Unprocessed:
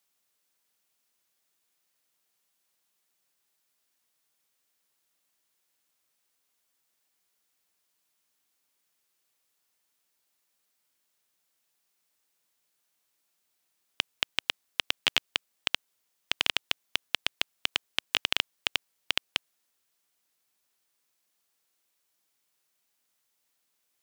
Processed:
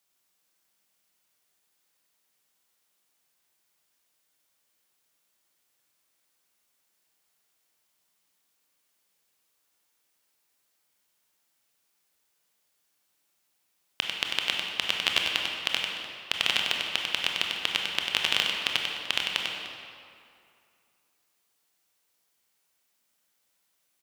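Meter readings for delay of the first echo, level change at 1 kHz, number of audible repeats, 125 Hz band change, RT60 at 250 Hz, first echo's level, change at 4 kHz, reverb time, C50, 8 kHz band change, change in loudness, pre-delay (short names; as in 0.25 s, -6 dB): 96 ms, +4.0 dB, 2, +4.0 dB, 2.4 s, -5.5 dB, +3.5 dB, 2.5 s, 0.0 dB, +2.5 dB, +3.0 dB, 21 ms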